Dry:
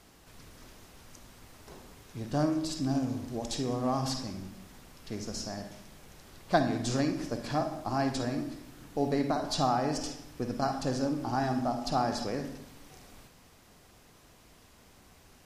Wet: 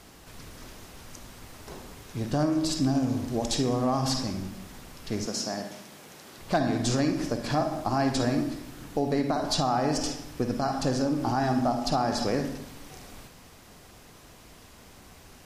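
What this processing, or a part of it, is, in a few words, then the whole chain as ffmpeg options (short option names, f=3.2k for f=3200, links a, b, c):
clipper into limiter: -filter_complex "[0:a]asoftclip=type=hard:threshold=-15dB,alimiter=limit=-22.5dB:level=0:latency=1:release=231,asettb=1/sr,asplit=3[a][b][c];[a]atrim=end=5.264[d];[b]atrim=start=5.26:end=6.39,asetpts=PTS-STARTPTS,afade=t=in:d=0.004:c=qsin,afade=t=out:st=1.126:d=0.004:c=qsin,highpass=190[e];[c]atrim=start=6.386[f];[d][e]acrossfade=d=0.004:c1=hsin:c2=qsin[g];[g][f]acrossfade=d=0.004:c1=qsin:c2=hsin,volume=7dB"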